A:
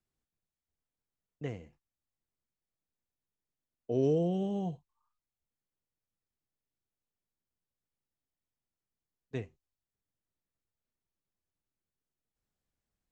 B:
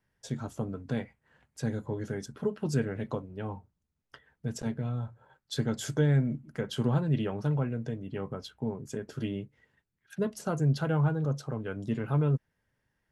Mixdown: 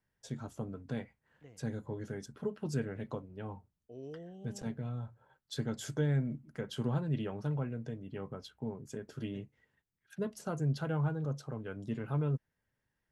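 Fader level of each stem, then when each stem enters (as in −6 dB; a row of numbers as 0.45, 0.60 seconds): −18.0, −6.0 decibels; 0.00, 0.00 seconds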